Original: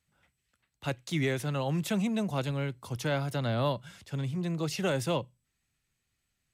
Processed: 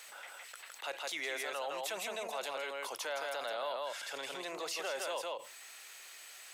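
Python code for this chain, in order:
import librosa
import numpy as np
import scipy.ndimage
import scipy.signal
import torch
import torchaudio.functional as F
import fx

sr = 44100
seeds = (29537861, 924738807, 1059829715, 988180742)

y = scipy.signal.sosfilt(scipy.signal.butter(4, 530.0, 'highpass', fs=sr, output='sos'), x)
y = y + 10.0 ** (-5.0 / 20.0) * np.pad(y, (int(162 * sr / 1000.0), 0))[:len(y)]
y = fx.env_flatten(y, sr, amount_pct=70)
y = F.gain(torch.from_numpy(y), -8.0).numpy()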